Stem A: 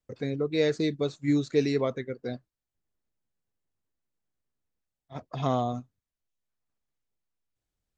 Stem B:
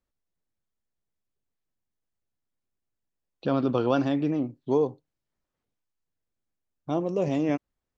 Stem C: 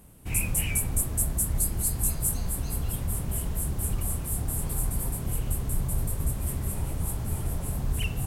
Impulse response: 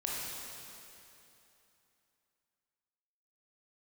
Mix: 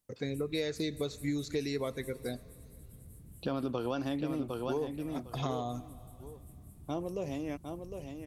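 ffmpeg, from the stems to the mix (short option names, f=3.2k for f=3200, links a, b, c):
-filter_complex "[0:a]volume=-3.5dB,asplit=2[a][b];[b]volume=-23.5dB[c];[1:a]dynaudnorm=f=200:g=13:m=11.5dB,volume=-13.5dB,asplit=2[d][e];[e]volume=-7.5dB[f];[2:a]afwtdn=0.0355,highpass=f=84:p=1,volume=-18.5dB,asplit=2[g][h];[h]volume=-11.5dB[i];[3:a]atrim=start_sample=2205[j];[c][j]afir=irnorm=-1:irlink=0[k];[f][i]amix=inputs=2:normalize=0,aecho=0:1:756|1512|2268:1|0.15|0.0225[l];[a][d][g][k][l]amix=inputs=5:normalize=0,highshelf=f=3.3k:g=9,acompressor=threshold=-30dB:ratio=6"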